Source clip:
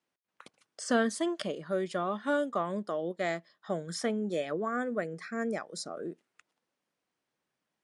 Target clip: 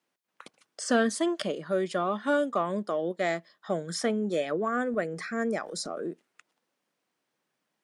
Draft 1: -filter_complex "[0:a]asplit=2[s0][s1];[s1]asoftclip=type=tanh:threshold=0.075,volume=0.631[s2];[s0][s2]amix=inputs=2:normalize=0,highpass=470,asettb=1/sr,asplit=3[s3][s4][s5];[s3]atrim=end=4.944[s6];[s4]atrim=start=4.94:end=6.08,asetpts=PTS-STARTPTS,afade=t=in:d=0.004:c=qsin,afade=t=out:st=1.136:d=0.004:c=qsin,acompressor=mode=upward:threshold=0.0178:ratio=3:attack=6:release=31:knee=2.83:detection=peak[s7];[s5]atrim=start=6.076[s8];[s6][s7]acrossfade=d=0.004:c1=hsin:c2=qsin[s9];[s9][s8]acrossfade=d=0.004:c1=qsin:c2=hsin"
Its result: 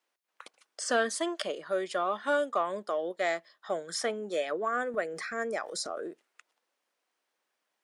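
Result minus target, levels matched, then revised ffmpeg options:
125 Hz band -12.0 dB
-filter_complex "[0:a]asplit=2[s0][s1];[s1]asoftclip=type=tanh:threshold=0.075,volume=0.631[s2];[s0][s2]amix=inputs=2:normalize=0,highpass=140,asettb=1/sr,asplit=3[s3][s4][s5];[s3]atrim=end=4.944[s6];[s4]atrim=start=4.94:end=6.08,asetpts=PTS-STARTPTS,afade=t=in:d=0.004:c=qsin,afade=t=out:st=1.136:d=0.004:c=qsin,acompressor=mode=upward:threshold=0.0178:ratio=3:attack=6:release=31:knee=2.83:detection=peak[s7];[s5]atrim=start=6.076[s8];[s6][s7]acrossfade=d=0.004:c1=hsin:c2=qsin[s9];[s9][s8]acrossfade=d=0.004:c1=qsin:c2=hsin"

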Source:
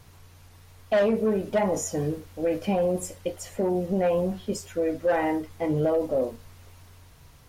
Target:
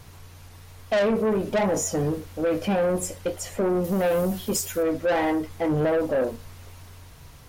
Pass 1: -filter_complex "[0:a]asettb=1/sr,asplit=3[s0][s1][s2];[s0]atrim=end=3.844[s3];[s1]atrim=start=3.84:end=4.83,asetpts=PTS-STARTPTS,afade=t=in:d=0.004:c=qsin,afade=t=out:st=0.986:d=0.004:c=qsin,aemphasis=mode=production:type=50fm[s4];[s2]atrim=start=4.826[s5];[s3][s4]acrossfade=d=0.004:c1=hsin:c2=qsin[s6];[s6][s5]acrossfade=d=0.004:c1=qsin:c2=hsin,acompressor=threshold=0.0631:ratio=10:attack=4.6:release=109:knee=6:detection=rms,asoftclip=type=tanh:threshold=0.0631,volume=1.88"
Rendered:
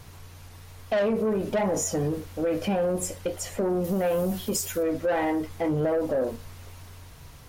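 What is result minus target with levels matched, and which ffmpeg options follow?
compression: peak gain reduction +6.5 dB
-filter_complex "[0:a]asettb=1/sr,asplit=3[s0][s1][s2];[s0]atrim=end=3.844[s3];[s1]atrim=start=3.84:end=4.83,asetpts=PTS-STARTPTS,afade=t=in:d=0.004:c=qsin,afade=t=out:st=0.986:d=0.004:c=qsin,aemphasis=mode=production:type=50fm[s4];[s2]atrim=start=4.826[s5];[s3][s4]acrossfade=d=0.004:c1=hsin:c2=qsin[s6];[s6][s5]acrossfade=d=0.004:c1=qsin:c2=hsin,asoftclip=type=tanh:threshold=0.0631,volume=1.88"

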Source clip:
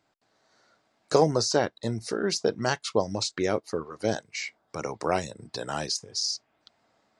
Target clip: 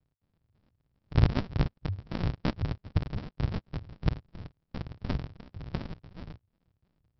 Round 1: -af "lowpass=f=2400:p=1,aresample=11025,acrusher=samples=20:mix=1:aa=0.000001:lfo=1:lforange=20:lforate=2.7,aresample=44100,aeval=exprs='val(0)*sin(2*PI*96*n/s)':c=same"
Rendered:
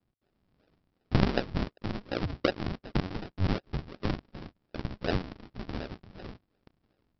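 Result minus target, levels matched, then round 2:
decimation with a swept rate: distortion -32 dB
-af "lowpass=f=2400:p=1,aresample=11025,acrusher=samples=66:mix=1:aa=0.000001:lfo=1:lforange=66:lforate=2.7,aresample=44100,aeval=exprs='val(0)*sin(2*PI*96*n/s)':c=same"

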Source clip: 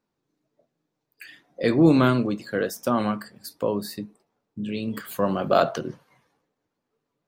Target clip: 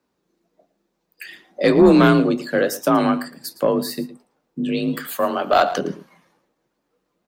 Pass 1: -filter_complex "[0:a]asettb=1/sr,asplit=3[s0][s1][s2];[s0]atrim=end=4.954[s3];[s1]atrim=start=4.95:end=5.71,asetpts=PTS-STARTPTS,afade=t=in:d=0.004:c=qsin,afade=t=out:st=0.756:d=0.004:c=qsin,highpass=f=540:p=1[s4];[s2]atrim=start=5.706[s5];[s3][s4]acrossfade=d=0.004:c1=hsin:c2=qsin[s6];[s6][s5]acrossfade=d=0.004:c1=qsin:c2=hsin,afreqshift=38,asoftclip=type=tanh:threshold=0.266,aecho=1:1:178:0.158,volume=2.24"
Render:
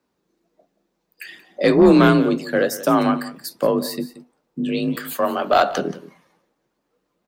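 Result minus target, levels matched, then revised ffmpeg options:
echo 65 ms late
-filter_complex "[0:a]asettb=1/sr,asplit=3[s0][s1][s2];[s0]atrim=end=4.954[s3];[s1]atrim=start=4.95:end=5.71,asetpts=PTS-STARTPTS,afade=t=in:d=0.004:c=qsin,afade=t=out:st=0.756:d=0.004:c=qsin,highpass=f=540:p=1[s4];[s2]atrim=start=5.706[s5];[s3][s4]acrossfade=d=0.004:c1=hsin:c2=qsin[s6];[s6][s5]acrossfade=d=0.004:c1=qsin:c2=hsin,afreqshift=38,asoftclip=type=tanh:threshold=0.266,aecho=1:1:113:0.158,volume=2.24"

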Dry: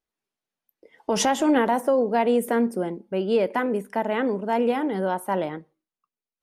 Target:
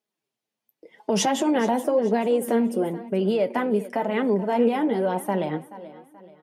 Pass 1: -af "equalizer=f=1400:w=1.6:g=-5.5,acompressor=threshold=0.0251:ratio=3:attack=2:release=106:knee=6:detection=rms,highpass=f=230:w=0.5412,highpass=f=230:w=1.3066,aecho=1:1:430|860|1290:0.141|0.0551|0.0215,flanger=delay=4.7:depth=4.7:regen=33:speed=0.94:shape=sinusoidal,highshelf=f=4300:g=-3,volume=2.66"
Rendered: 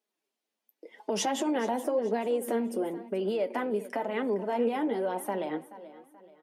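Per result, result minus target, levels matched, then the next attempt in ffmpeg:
compression: peak gain reduction +6.5 dB; 125 Hz band -6.0 dB
-af "equalizer=f=1400:w=1.6:g=-5.5,acompressor=threshold=0.0794:ratio=3:attack=2:release=106:knee=6:detection=rms,highpass=f=230:w=0.5412,highpass=f=230:w=1.3066,aecho=1:1:430|860|1290:0.141|0.0551|0.0215,flanger=delay=4.7:depth=4.7:regen=33:speed=0.94:shape=sinusoidal,highshelf=f=4300:g=-3,volume=2.66"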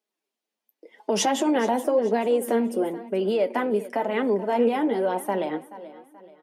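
125 Hz band -6.5 dB
-af "equalizer=f=1400:w=1.6:g=-5.5,acompressor=threshold=0.0794:ratio=3:attack=2:release=106:knee=6:detection=rms,highpass=f=110:w=0.5412,highpass=f=110:w=1.3066,aecho=1:1:430|860|1290:0.141|0.0551|0.0215,flanger=delay=4.7:depth=4.7:regen=33:speed=0.94:shape=sinusoidal,highshelf=f=4300:g=-3,volume=2.66"

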